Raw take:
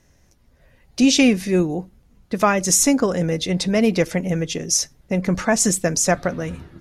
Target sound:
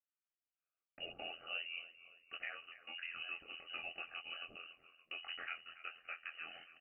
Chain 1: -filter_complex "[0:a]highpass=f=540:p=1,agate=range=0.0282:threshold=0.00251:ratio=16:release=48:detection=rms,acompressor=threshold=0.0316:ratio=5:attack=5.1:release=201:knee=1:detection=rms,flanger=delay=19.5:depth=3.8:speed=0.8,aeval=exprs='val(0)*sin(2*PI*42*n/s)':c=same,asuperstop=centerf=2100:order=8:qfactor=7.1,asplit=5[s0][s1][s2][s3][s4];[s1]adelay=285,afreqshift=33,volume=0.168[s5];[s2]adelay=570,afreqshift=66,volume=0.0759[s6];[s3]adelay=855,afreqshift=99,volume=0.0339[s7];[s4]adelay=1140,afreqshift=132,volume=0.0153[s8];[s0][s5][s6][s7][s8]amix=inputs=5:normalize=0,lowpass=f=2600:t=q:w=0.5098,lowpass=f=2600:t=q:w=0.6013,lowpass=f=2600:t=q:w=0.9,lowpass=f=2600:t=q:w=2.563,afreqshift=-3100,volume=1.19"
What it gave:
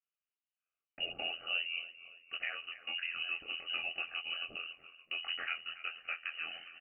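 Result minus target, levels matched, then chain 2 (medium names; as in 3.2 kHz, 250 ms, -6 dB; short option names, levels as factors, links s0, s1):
compression: peak gain reduction -5.5 dB; 500 Hz band -4.5 dB
-filter_complex "[0:a]highpass=f=1300:p=1,agate=range=0.0282:threshold=0.00251:ratio=16:release=48:detection=rms,acompressor=threshold=0.0141:ratio=5:attack=5.1:release=201:knee=1:detection=rms,flanger=delay=19.5:depth=3.8:speed=0.8,aeval=exprs='val(0)*sin(2*PI*42*n/s)':c=same,asuperstop=centerf=2100:order=8:qfactor=7.1,asplit=5[s0][s1][s2][s3][s4];[s1]adelay=285,afreqshift=33,volume=0.168[s5];[s2]adelay=570,afreqshift=66,volume=0.0759[s6];[s3]adelay=855,afreqshift=99,volume=0.0339[s7];[s4]adelay=1140,afreqshift=132,volume=0.0153[s8];[s0][s5][s6][s7][s8]amix=inputs=5:normalize=0,lowpass=f=2600:t=q:w=0.5098,lowpass=f=2600:t=q:w=0.6013,lowpass=f=2600:t=q:w=0.9,lowpass=f=2600:t=q:w=2.563,afreqshift=-3100,volume=1.19"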